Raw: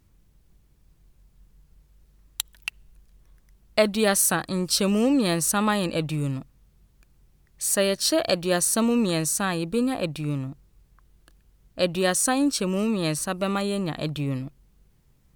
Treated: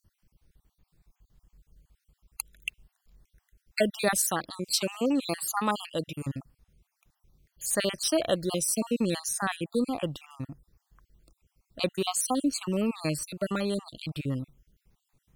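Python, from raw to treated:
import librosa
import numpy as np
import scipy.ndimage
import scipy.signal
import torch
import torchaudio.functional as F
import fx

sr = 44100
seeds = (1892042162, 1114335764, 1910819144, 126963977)

y = fx.spec_dropout(x, sr, seeds[0], share_pct=47)
y = fx.low_shelf(y, sr, hz=160.0, db=-10.5, at=(4.22, 6.23))
y = y * 10.0 ** (-2.5 / 20.0)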